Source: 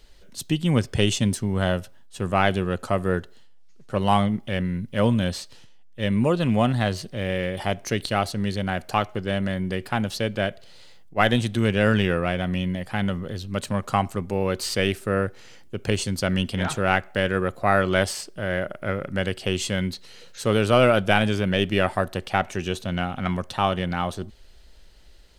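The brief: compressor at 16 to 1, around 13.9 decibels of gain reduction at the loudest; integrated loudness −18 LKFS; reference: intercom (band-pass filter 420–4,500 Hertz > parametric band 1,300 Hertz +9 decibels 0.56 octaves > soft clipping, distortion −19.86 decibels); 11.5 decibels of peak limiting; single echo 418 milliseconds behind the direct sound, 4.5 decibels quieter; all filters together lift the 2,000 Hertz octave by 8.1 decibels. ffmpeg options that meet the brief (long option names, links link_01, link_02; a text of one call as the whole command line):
ffmpeg -i in.wav -af "equalizer=frequency=2000:width_type=o:gain=6,acompressor=threshold=-25dB:ratio=16,alimiter=limit=-20.5dB:level=0:latency=1,highpass=420,lowpass=4500,equalizer=frequency=1300:width_type=o:width=0.56:gain=9,aecho=1:1:418:0.596,asoftclip=threshold=-21.5dB,volume=16.5dB" out.wav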